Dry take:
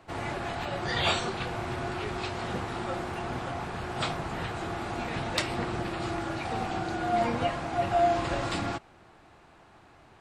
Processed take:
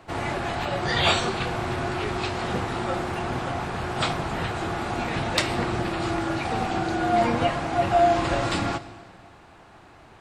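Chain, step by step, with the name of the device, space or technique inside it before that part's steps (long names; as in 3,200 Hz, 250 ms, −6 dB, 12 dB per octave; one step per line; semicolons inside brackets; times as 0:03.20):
saturated reverb return (on a send at −12.5 dB: convolution reverb RT60 1.7 s, pre-delay 16 ms + soft clipping −24.5 dBFS, distortion −12 dB)
on the sum: level +5.5 dB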